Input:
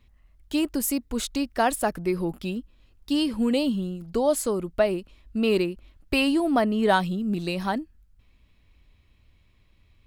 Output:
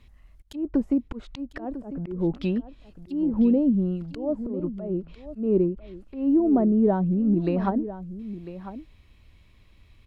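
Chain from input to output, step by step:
treble cut that deepens with the level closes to 400 Hz, closed at −21.5 dBFS
volume swells 214 ms
single-tap delay 999 ms −13.5 dB
level +5 dB

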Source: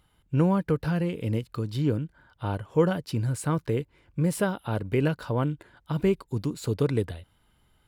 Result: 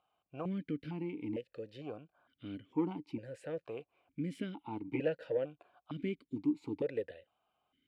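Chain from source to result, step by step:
0:04.87–0:05.37: comb filter 6.3 ms, depth 93%
soft clipping −14 dBFS, distortion −20 dB
formant filter that steps through the vowels 2.2 Hz
level +2.5 dB

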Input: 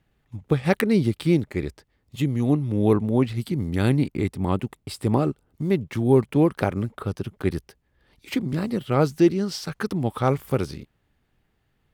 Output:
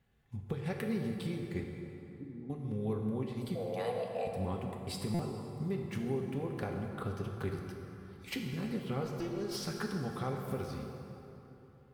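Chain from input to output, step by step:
0:09.05–0:09.57: lower of the sound and its delayed copy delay 3.1 ms
downward compressor 5 to 1, threshold −30 dBFS, peak gain reduction 16 dB
0:01.63–0:02.50: formant resonators in series u
0:03.55–0:04.27: frequency shifter +360 Hz
notch comb filter 310 Hz
dense smooth reverb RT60 3.3 s, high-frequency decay 0.6×, DRR 1.5 dB
buffer that repeats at 0:05.14, samples 256, times 8
level −4.5 dB

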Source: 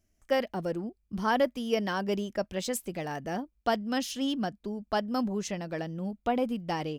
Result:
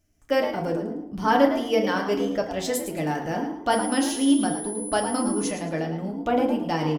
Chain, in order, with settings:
0:03.70–0:05.50: steady tone 10,000 Hz −40 dBFS
on a send: echo with shifted repeats 108 ms, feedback 30%, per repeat +80 Hz, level −10 dB
on the sum: feedback delay network reverb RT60 0.61 s, low-frequency decay 1.25×, high-frequency decay 0.5×, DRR 1.5 dB
level +3 dB

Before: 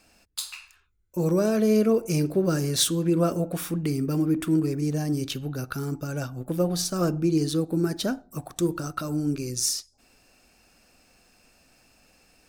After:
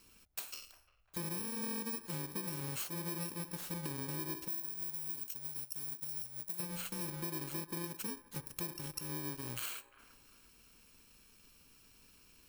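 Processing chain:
samples in bit-reversed order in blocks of 64 samples
0:04.48–0:06.60: first-order pre-emphasis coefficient 0.8
downward compressor 6 to 1, threshold −36 dBFS, peak gain reduction 17.5 dB
delay with a band-pass on its return 350 ms, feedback 34%, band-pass 1,000 Hz, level −14 dB
level −3 dB

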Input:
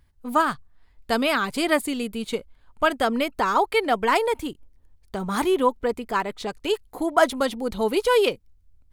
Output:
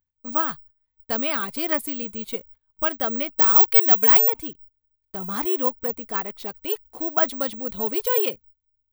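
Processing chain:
noise gate −44 dBFS, range −18 dB
bad sample-rate conversion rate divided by 2×, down none, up zero stuff
0:03.38–0:04.30: high-shelf EQ 4,400 Hz +11 dB
level −5.5 dB

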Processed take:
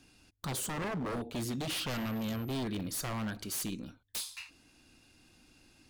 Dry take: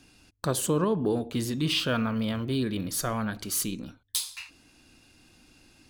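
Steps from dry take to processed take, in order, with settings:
wave folding −26 dBFS
0:01.89–0:02.52: steady tone 13,000 Hz −50 dBFS
level −4.5 dB

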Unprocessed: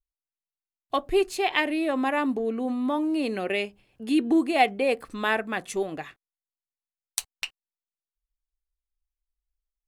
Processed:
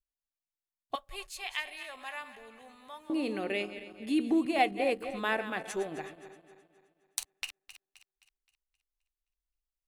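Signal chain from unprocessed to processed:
feedback delay that plays each chunk backwards 131 ms, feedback 65%, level −12 dB
0:00.95–0:03.10: guitar amp tone stack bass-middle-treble 10-0-10
level −6 dB

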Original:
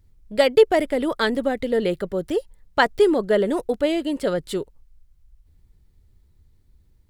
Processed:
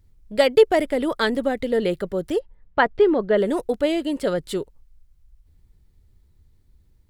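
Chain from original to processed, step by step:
0:02.38–0:03.36: low-pass filter 1,900 Hz → 3,200 Hz 12 dB per octave

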